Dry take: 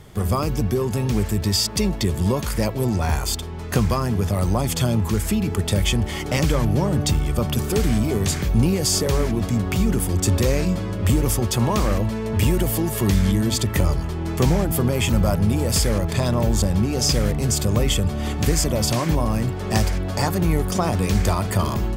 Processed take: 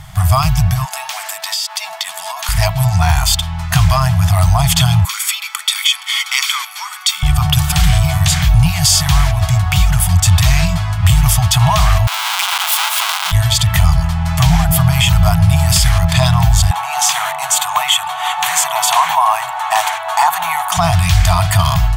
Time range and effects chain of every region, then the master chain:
0.85–2.49 HPF 540 Hz 24 dB/oct + compressor 12:1, threshold -28 dBFS
5.05–7.23 HPF 1300 Hz 24 dB/oct + comb 0.9 ms, depth 56%
12.07–13.32 half-waves squared off + steep high-pass 870 Hz + notch 1800 Hz, Q 7.9
16.71–20.77 resonant high-pass 900 Hz, resonance Q 3.9 + bell 5000 Hz -13.5 dB 0.25 oct
whole clip: FFT band-reject 180–630 Hz; dynamic EQ 3300 Hz, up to +6 dB, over -44 dBFS, Q 2.2; maximiser +12 dB; gain -1 dB

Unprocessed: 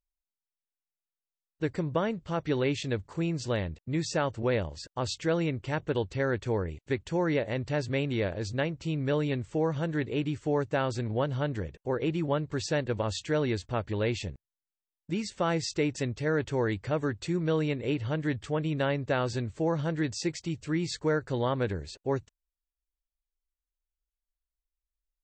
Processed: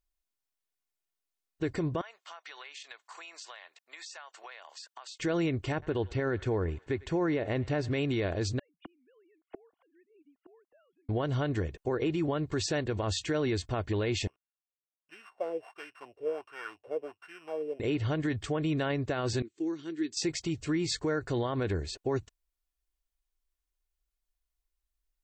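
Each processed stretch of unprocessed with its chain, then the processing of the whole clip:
2.01–5.2 HPF 840 Hz 24 dB/oct + compressor 10:1, threshold -46 dBFS
5.72–7.93 high shelf 4000 Hz -10 dB + thinning echo 0.1 s, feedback 78%, high-pass 870 Hz, level -24 dB
8.59–11.09 sine-wave speech + flipped gate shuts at -34 dBFS, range -40 dB
14.27–17.8 sample sorter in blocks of 16 samples + tone controls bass -9 dB, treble +2 dB + wah 1.4 Hz 460–1600 Hz, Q 5.7
19.42–20.17 HPF 670 Hz + gate -55 dBFS, range -14 dB + EQ curve 110 Hz 0 dB, 350 Hz +8 dB, 580 Hz -25 dB, 3100 Hz -8 dB
whole clip: comb 2.8 ms, depth 34%; limiter -25.5 dBFS; gain +3.5 dB

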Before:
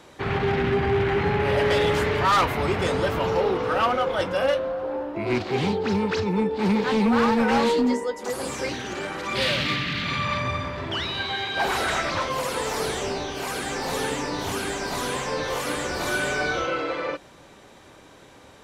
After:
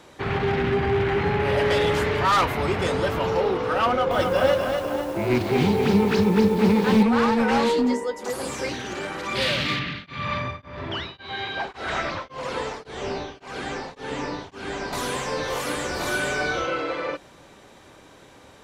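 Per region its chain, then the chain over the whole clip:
3.86–7.03 low shelf 350 Hz +5 dB + lo-fi delay 0.248 s, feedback 55%, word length 7-bit, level -4 dB
9.79–14.93 air absorption 110 m + beating tremolo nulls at 1.8 Hz
whole clip: dry

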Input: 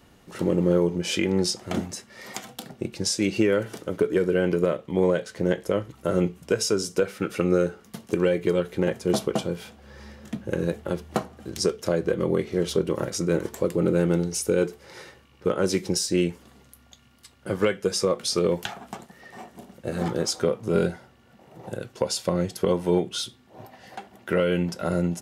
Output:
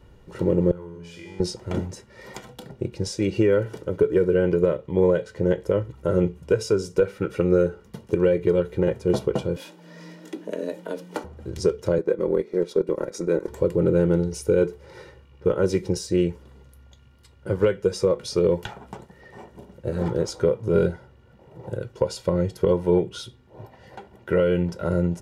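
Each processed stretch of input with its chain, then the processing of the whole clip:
0.71–1.4 resonant low shelf 690 Hz -6.5 dB, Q 1.5 + resonator 85 Hz, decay 1.1 s, mix 90% + fast leveller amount 50%
9.56–11.24 high shelf 2500 Hz +10.5 dB + compressor 1.5:1, threshold -32 dBFS + frequency shift +100 Hz
11.98–13.48 HPF 200 Hz 24 dB/oct + notch 3000 Hz, Q 5.2 + transient shaper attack -1 dB, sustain -7 dB
whole clip: tilt -2.5 dB/oct; comb 2.1 ms, depth 50%; gain -2.5 dB

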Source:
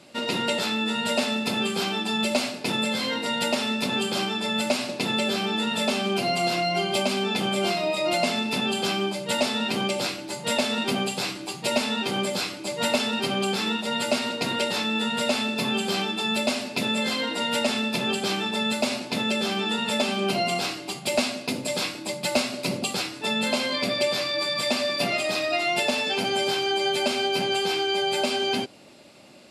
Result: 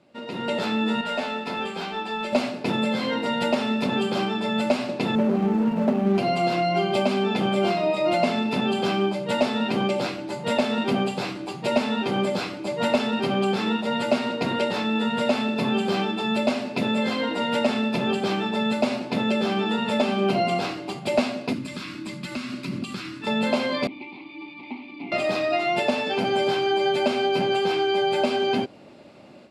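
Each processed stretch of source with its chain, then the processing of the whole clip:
1.01–2.33 overdrive pedal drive 9 dB, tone 5400 Hz, clips at -13.5 dBFS + resonator 88 Hz, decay 0.23 s, mix 80%
5.15–6.18 median filter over 25 samples + resonant low shelf 120 Hz -9.5 dB, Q 3
21.53–23.27 band shelf 610 Hz -15.5 dB 1.3 oct + compressor 4:1, threshold -29 dBFS
23.87–25.12 median filter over 15 samples + vowel filter u + band shelf 3200 Hz +15 dB 1.3 oct
whole clip: LPF 1300 Hz 6 dB/oct; AGC gain up to 11.5 dB; gain -6.5 dB

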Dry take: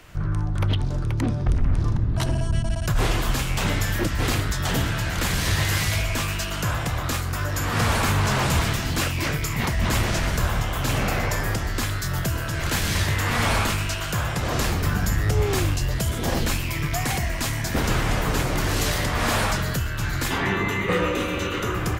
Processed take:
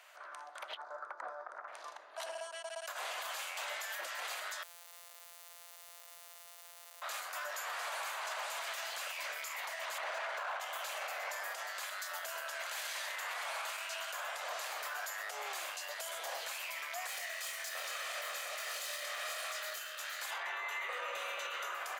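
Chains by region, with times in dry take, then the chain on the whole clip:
0.77–1.68 LPF 7700 Hz + resonant high shelf 2000 Hz -12 dB, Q 3
4.63–7.02 sample sorter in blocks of 256 samples + pre-emphasis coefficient 0.8 + split-band echo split 1100 Hz, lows 0.309 s, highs 0.196 s, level -14 dB
9.98–10.6 formant sharpening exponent 1.5 + overdrive pedal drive 32 dB, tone 1300 Hz, clips at -12 dBFS
17.07–20.22 minimum comb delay 1.6 ms + bell 810 Hz -8.5 dB 1.1 oct + doubler 24 ms -5 dB
whole clip: elliptic high-pass 600 Hz, stop band 80 dB; notch 5400 Hz, Q 16; limiter -24.5 dBFS; gain -7 dB

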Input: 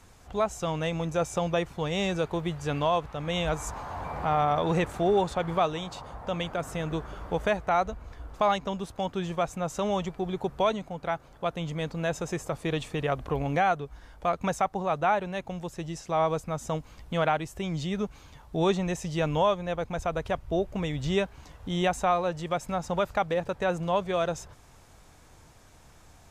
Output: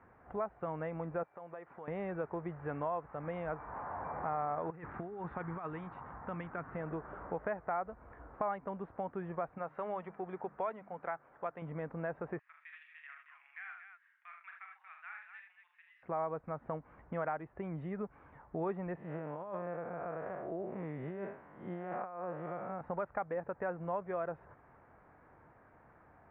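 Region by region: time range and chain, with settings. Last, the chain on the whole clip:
1.23–1.88 HPF 490 Hz 6 dB/oct + compressor 3:1, threshold -44 dBFS
4.7–6.76 bell 580 Hz -10.5 dB 1.1 oct + negative-ratio compressor -32 dBFS, ratio -0.5
9.58–11.62 tilt +2.5 dB/oct + notches 50/100/150/200/250/300 Hz
12.39–16.03 inverse Chebyshev high-pass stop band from 470 Hz, stop band 70 dB + tapped delay 43/76/122/233 ms -5.5/-7/-17.5/-9.5 dB
18.97–22.81 time blur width 0.173 s + HPF 140 Hz + negative-ratio compressor -32 dBFS, ratio -0.5
whole clip: HPF 240 Hz 6 dB/oct; compressor 2:1, threshold -37 dBFS; steep low-pass 1900 Hz 36 dB/oct; gain -2 dB

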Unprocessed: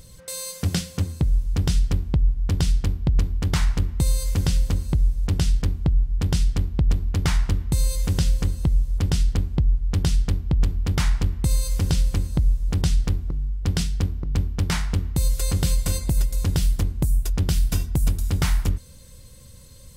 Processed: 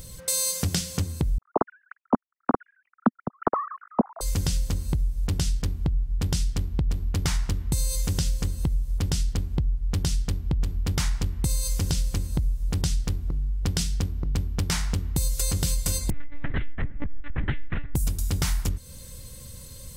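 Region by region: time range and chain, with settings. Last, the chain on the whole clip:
1.38–4.21 sine-wave speech + steep low-pass 1300 Hz 48 dB/oct + dynamic EQ 240 Hz, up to +3 dB, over -26 dBFS, Q 2.1
16.1–17.95 synth low-pass 1900 Hz, resonance Q 5.2 + monotone LPC vocoder at 8 kHz 290 Hz
whole clip: dynamic EQ 6200 Hz, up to +5 dB, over -45 dBFS, Q 0.94; compressor 3:1, threshold -28 dBFS; high shelf 9000 Hz +7 dB; gain +3.5 dB

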